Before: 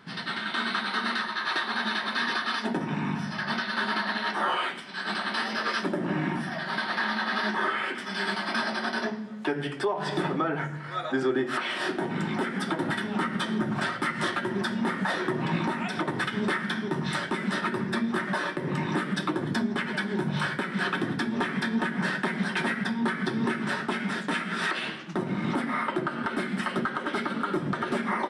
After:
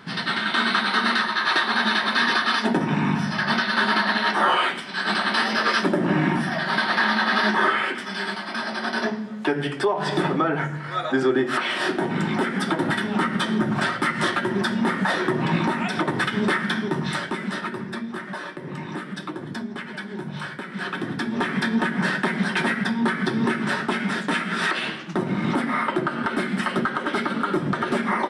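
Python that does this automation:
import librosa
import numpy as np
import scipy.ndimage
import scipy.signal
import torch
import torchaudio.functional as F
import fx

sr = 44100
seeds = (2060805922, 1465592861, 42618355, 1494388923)

y = fx.gain(x, sr, db=fx.line((7.69, 7.5), (8.49, -1.5), (9.06, 5.5), (16.77, 5.5), (18.1, -4.0), (20.59, -4.0), (21.57, 5.0)))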